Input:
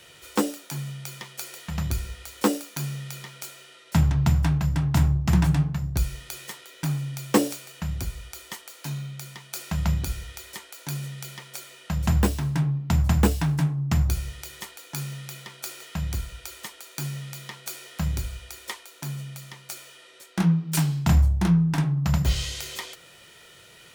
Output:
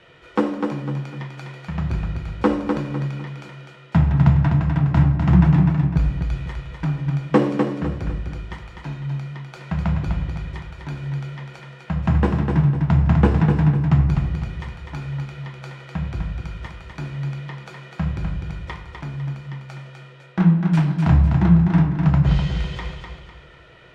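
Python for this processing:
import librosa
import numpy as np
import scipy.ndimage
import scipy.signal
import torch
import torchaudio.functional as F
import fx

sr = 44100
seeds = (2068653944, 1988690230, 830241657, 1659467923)

p1 = scipy.signal.sosfilt(scipy.signal.butter(2, 2000.0, 'lowpass', fs=sr, output='sos'), x)
p2 = p1 + fx.echo_feedback(p1, sr, ms=251, feedback_pct=36, wet_db=-5.5, dry=0)
p3 = fx.room_shoebox(p2, sr, seeds[0], volume_m3=380.0, walls='mixed', distance_m=0.63)
y = p3 * librosa.db_to_amplitude(3.5)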